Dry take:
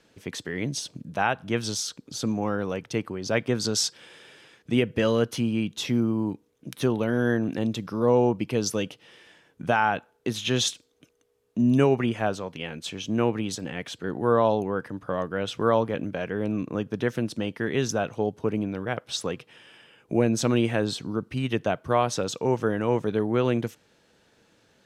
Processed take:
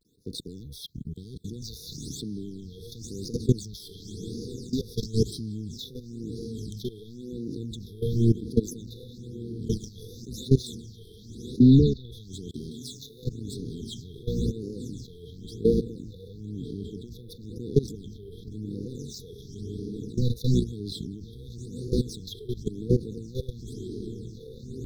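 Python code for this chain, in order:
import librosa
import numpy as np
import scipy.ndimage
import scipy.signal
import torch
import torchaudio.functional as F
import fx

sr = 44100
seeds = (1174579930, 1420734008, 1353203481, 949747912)

y = fx.octave_divider(x, sr, octaves=1, level_db=-6.0)
y = fx.echo_diffused(y, sr, ms=1311, feedback_pct=41, wet_db=-9.0)
y = fx.level_steps(y, sr, step_db=21)
y = fx.leveller(y, sr, passes=2)
y = fx.cheby1_lowpass(y, sr, hz=3900.0, order=3, at=(11.58, 12.12), fade=0.02)
y = fx.quant_dither(y, sr, seeds[0], bits=12, dither='none')
y = fx.brickwall_bandstop(y, sr, low_hz=480.0, high_hz=3300.0)
y = fx.dynamic_eq(y, sr, hz=1400.0, q=0.92, threshold_db=-45.0, ratio=4.0, max_db=-3)
y = fx.phaser_stages(y, sr, stages=8, low_hz=260.0, high_hz=2600.0, hz=0.97, feedback_pct=45)
y = fx.tilt_eq(y, sr, slope=2.5, at=(12.7, 13.25))
y = fx.vibrato(y, sr, rate_hz=0.7, depth_cents=89.0)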